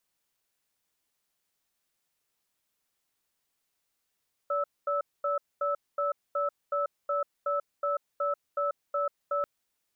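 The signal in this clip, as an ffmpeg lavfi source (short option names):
-f lavfi -i "aevalsrc='0.0376*(sin(2*PI*575*t)+sin(2*PI*1310*t))*clip(min(mod(t,0.37),0.14-mod(t,0.37))/0.005,0,1)':d=4.94:s=44100"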